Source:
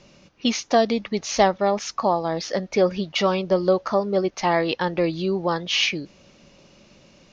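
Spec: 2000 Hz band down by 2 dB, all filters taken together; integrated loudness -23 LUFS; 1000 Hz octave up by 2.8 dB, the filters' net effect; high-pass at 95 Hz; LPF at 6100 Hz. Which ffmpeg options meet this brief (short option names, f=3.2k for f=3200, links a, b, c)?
-af "highpass=95,lowpass=6.1k,equalizer=f=1k:t=o:g=4.5,equalizer=f=2k:t=o:g=-3.5,volume=-1.5dB"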